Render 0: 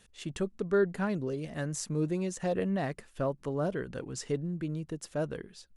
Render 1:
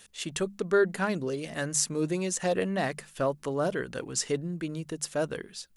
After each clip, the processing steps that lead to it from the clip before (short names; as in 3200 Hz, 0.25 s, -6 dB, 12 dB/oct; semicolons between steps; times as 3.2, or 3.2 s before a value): tilt +2 dB/oct; notches 50/100/150/200 Hz; gain +5.5 dB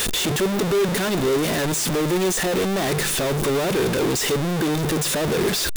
infinite clipping; small resonant body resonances 380/3600 Hz, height 7 dB, ringing for 20 ms; gain +7 dB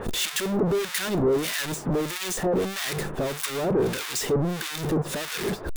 harmonic tremolo 1.6 Hz, depth 100%, crossover 1200 Hz